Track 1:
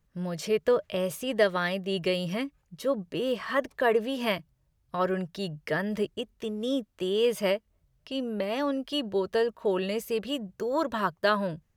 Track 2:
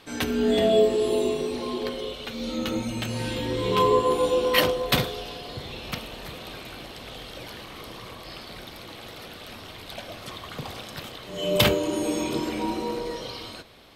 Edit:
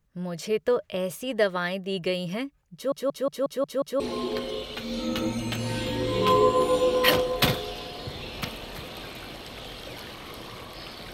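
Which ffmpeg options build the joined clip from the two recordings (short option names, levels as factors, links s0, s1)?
-filter_complex "[0:a]apad=whole_dur=11.13,atrim=end=11.13,asplit=7[s0][s1][s2][s3][s4][s5][s6];[s0]atrim=end=2.922[s7];[s1]atrim=start=2.738:end=2.922[s8];[s2]atrim=start=2.738:end=2.922[s9];[s3]atrim=start=2.738:end=2.922[s10];[s4]atrim=start=2.738:end=2.922[s11];[s5]atrim=start=2.738:end=2.922[s12];[s6]atrim=start=2.738:end=2.922[s13];[1:a]atrim=start=1.498:end=8.63[s14];[s7][s8]acrossfade=d=0.004:c1=hsin:c2=hsin[s15];[s15][s9]acrossfade=d=0.004:c1=hsin:c2=hsin[s16];[s16][s10]acrossfade=d=0.004:c1=hsin:c2=hsin[s17];[s17][s11]acrossfade=d=0.004:c1=hsin:c2=hsin[s18];[s18][s12]acrossfade=d=0.004:c1=hsin:c2=hsin[s19];[s19][s13]acrossfade=d=0.004:c1=hsin:c2=hsin[s20];[s20][s14]acrossfade=d=0.004:c1=hsin:c2=hsin"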